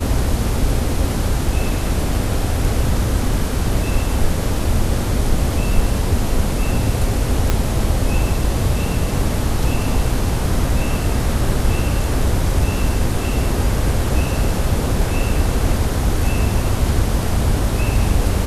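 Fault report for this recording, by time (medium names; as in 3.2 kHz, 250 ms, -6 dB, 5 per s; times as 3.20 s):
7.50 s: pop -3 dBFS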